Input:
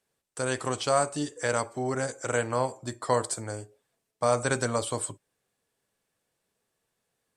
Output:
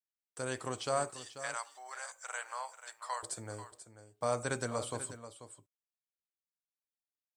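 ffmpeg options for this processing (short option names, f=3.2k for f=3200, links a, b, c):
-filter_complex "[0:a]asettb=1/sr,asplit=3[a][b][c];[a]atrim=end=1.104[d];[b]atrim=start=1.1:end=3.23,asetpts=PTS-STARTPTS,afade=t=in:d=0.004:c=qsin,afade=t=out:st=2.126:d=0.004:c=qsin,highpass=f=830:w=0.5412,highpass=f=830:w=1.3066[e];[c]atrim=start=3.226[f];[d][e]acrossfade=d=0.004:c1=hsin:c2=qsin[g];[g][f]acrossfade=d=0.004:c1=qsin:c2=hsin,acrusher=bits=10:mix=0:aa=0.000001,aecho=1:1:488:0.237,volume=-8.5dB"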